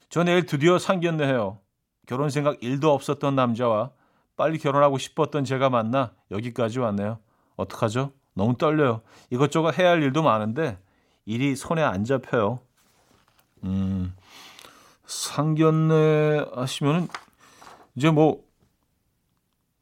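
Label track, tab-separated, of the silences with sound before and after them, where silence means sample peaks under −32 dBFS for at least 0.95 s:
12.570000	13.640000	silence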